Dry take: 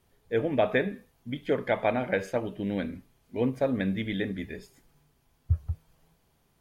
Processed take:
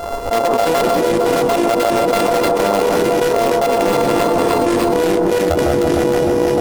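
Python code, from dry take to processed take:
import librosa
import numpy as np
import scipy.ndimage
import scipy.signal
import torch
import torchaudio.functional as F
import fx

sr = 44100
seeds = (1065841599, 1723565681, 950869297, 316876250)

p1 = np.r_[np.sort(x[:len(x) // 64 * 64].reshape(-1, 64), axis=1).ravel(), x[len(x) // 64 * 64:]]
p2 = fx.graphic_eq_10(p1, sr, hz=(125, 500, 1000, 2000), db=(-10, 12, 12, -3))
p3 = fx.transient(p2, sr, attack_db=2, sustain_db=-8)
p4 = (np.mod(10.0 ** (12.0 / 20.0) * p3 + 1.0, 2.0) - 1.0) / 10.0 ** (12.0 / 20.0)
p5 = p3 + F.gain(torch.from_numpy(p4), -8.0).numpy()
p6 = fx.echo_pitch(p5, sr, ms=203, semitones=-6, count=2, db_per_echo=-6.0)
p7 = p6 + fx.echo_alternate(p6, sr, ms=153, hz=1300.0, feedback_pct=73, wet_db=-7, dry=0)
p8 = fx.env_flatten(p7, sr, amount_pct=100)
y = F.gain(torch.from_numpy(p8), -6.0).numpy()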